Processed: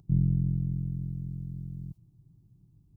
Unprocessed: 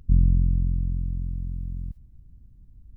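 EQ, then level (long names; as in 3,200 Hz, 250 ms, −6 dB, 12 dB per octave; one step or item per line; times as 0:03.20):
high-pass filter 130 Hz 12 dB per octave
low-shelf EQ 250 Hz +9 dB
phaser with its sweep stopped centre 350 Hz, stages 8
−1.5 dB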